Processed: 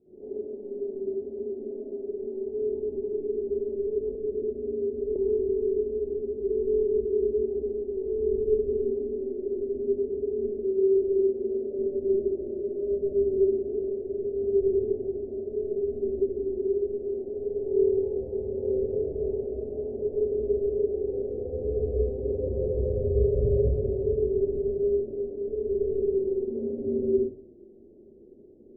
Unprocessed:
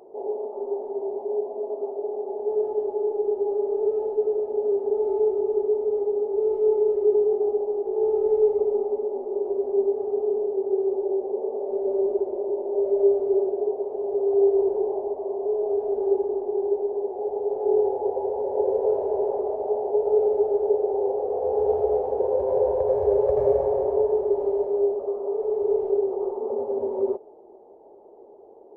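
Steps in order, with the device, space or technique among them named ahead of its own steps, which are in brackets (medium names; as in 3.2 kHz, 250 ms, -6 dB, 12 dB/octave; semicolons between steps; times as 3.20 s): next room (low-pass 250 Hz 24 dB/octave; reverberation RT60 0.55 s, pre-delay 51 ms, DRR -11 dB); 4.15–5.16 s: Chebyshev low-pass 760 Hz, order 6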